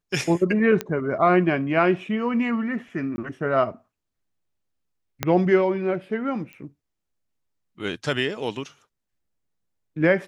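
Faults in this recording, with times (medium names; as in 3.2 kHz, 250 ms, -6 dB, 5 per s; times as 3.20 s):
0.81 s: pop -11 dBFS
3.16–3.18 s: dropout 20 ms
5.23 s: pop -7 dBFS
6.53 s: pop -27 dBFS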